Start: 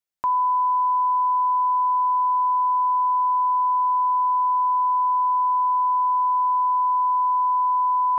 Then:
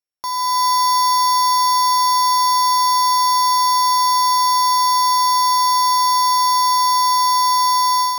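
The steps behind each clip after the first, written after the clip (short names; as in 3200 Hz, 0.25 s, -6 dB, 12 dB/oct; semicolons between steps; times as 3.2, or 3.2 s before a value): sample sorter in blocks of 8 samples; AGC gain up to 9 dB; gain -4 dB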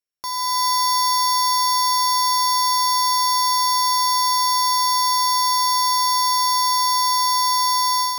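bell 850 Hz -6 dB 0.94 oct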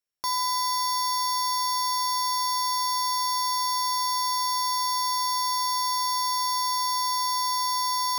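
limiter -19.5 dBFS, peak gain reduction 7.5 dB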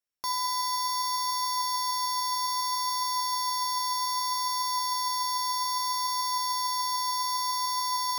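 flange 0.63 Hz, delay 2.9 ms, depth 5.5 ms, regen +85%; gain +1.5 dB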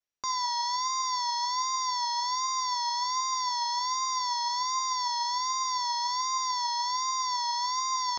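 vibrato 1.3 Hz 76 cents; downsampling 16000 Hz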